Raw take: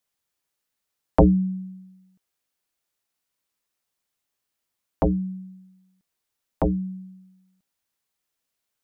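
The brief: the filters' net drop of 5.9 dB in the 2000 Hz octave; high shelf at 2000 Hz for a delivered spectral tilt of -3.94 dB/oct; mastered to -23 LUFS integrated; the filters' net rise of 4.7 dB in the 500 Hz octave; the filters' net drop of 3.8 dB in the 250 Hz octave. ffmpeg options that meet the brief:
-af "equalizer=f=250:t=o:g=-8,equalizer=f=500:t=o:g=8.5,highshelf=f=2k:g=-8,equalizer=f=2k:t=o:g=-4.5,volume=0.5dB"

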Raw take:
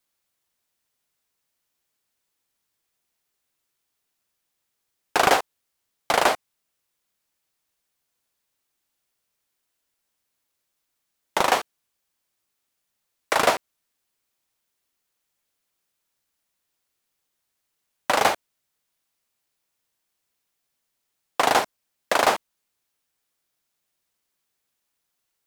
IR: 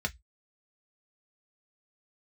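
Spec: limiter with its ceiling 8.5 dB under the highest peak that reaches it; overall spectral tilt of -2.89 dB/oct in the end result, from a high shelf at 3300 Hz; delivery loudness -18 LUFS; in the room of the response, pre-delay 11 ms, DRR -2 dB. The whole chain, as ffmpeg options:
-filter_complex "[0:a]highshelf=f=3.3k:g=-6,alimiter=limit=-13.5dB:level=0:latency=1,asplit=2[a][b];[1:a]atrim=start_sample=2205,adelay=11[c];[b][c]afir=irnorm=-1:irlink=0,volume=-3dB[d];[a][d]amix=inputs=2:normalize=0,volume=7dB"

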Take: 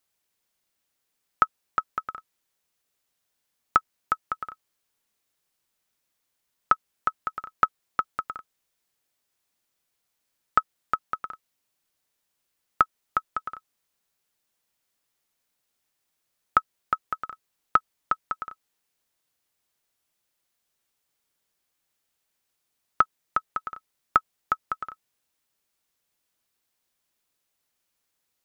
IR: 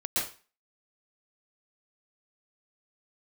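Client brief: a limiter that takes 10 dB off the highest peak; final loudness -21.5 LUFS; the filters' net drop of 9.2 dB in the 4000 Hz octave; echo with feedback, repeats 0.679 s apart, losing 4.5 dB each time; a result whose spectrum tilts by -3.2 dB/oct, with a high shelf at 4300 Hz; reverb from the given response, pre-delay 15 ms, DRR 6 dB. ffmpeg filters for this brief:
-filter_complex "[0:a]equalizer=f=4k:t=o:g=-8.5,highshelf=f=4.3k:g=-9,alimiter=limit=-16dB:level=0:latency=1,aecho=1:1:679|1358|2037|2716|3395|4074|4753|5432|6111:0.596|0.357|0.214|0.129|0.0772|0.0463|0.0278|0.0167|0.01,asplit=2[a][b];[1:a]atrim=start_sample=2205,adelay=15[c];[b][c]afir=irnorm=-1:irlink=0,volume=-13.5dB[d];[a][d]amix=inputs=2:normalize=0,volume=15.5dB"

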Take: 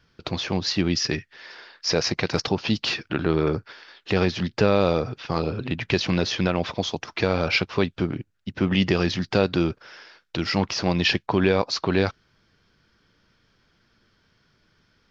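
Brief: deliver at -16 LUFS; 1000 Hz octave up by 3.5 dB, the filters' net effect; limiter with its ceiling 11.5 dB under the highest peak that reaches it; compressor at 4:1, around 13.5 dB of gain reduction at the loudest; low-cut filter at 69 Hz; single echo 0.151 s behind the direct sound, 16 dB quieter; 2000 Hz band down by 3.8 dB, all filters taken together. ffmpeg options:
-af "highpass=69,equalizer=f=1k:t=o:g=6.5,equalizer=f=2k:t=o:g=-7,acompressor=threshold=-31dB:ratio=4,alimiter=level_in=2dB:limit=-24dB:level=0:latency=1,volume=-2dB,aecho=1:1:151:0.158,volume=22dB"

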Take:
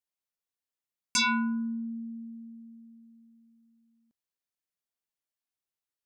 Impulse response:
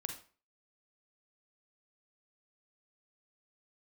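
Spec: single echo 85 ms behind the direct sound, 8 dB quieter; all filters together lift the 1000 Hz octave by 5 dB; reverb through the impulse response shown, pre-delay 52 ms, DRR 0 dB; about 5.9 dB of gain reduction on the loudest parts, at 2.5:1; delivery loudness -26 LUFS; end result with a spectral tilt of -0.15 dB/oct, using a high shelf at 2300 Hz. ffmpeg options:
-filter_complex "[0:a]equalizer=f=1k:t=o:g=4,highshelf=f=2.3k:g=7,acompressor=threshold=-27dB:ratio=2.5,aecho=1:1:85:0.398,asplit=2[a][b];[1:a]atrim=start_sample=2205,adelay=52[c];[b][c]afir=irnorm=-1:irlink=0,volume=1dB[d];[a][d]amix=inputs=2:normalize=0,volume=1.5dB"

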